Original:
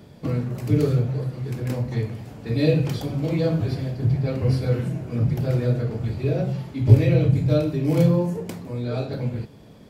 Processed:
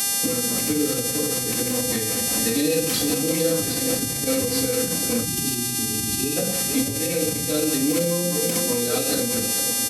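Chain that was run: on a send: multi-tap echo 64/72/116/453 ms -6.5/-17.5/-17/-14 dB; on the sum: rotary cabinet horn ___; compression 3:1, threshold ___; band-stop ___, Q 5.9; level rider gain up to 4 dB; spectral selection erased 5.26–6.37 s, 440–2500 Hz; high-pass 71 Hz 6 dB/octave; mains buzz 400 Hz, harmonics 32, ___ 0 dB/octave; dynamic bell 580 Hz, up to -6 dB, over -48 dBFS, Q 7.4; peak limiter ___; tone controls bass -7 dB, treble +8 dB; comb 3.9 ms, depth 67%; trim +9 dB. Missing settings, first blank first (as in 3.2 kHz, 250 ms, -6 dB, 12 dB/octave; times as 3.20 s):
5 Hz, -27 dBFS, 840 Hz, -40 dBFS, -22 dBFS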